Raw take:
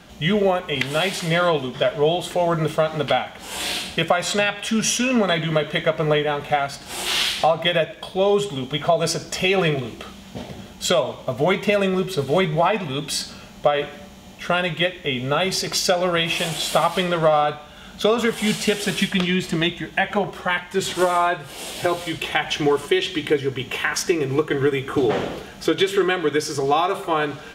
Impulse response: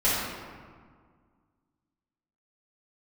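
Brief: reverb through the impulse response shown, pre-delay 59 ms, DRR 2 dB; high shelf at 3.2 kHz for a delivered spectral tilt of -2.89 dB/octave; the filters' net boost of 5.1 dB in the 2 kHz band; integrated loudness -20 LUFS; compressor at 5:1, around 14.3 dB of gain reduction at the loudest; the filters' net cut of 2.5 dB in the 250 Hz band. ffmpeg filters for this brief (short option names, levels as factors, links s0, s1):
-filter_complex "[0:a]equalizer=f=250:t=o:g=-4,equalizer=f=2000:t=o:g=4,highshelf=f=3200:g=7,acompressor=threshold=0.0316:ratio=5,asplit=2[s0][s1];[1:a]atrim=start_sample=2205,adelay=59[s2];[s1][s2]afir=irnorm=-1:irlink=0,volume=0.15[s3];[s0][s3]amix=inputs=2:normalize=0,volume=2.99"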